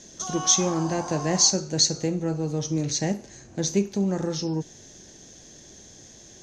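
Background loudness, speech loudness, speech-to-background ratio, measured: -35.5 LUFS, -24.5 LUFS, 11.0 dB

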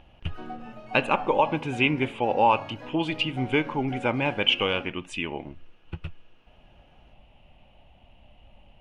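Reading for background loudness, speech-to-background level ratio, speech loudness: -42.0 LUFS, 16.5 dB, -25.5 LUFS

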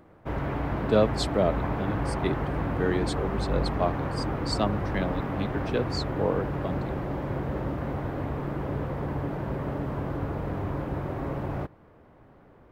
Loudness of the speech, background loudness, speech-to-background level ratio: -30.5 LUFS, -31.0 LUFS, 0.5 dB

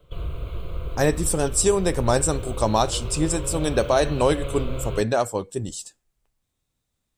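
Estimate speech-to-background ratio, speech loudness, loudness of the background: 10.0 dB, -23.0 LUFS, -33.0 LUFS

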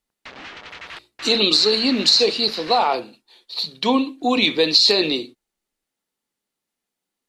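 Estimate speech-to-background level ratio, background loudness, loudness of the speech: 19.0 dB, -36.5 LUFS, -17.5 LUFS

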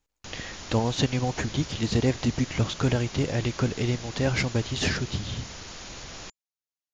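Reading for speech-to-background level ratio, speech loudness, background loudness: 12.0 dB, -27.5 LUFS, -39.5 LUFS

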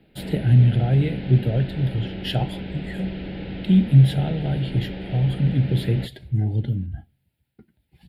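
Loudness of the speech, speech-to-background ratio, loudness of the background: -21.5 LUFS, 11.5 dB, -33.0 LUFS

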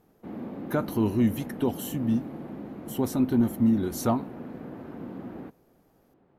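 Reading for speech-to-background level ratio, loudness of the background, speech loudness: 12.0 dB, -39.0 LUFS, -27.0 LUFS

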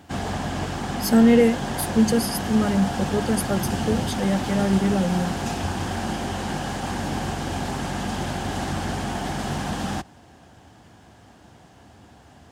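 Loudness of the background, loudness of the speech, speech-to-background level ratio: -28.0 LUFS, -22.0 LUFS, 6.0 dB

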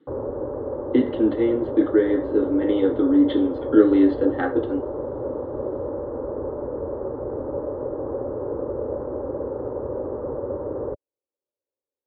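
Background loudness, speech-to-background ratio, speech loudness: -29.5 LUFS, 8.5 dB, -21.0 LUFS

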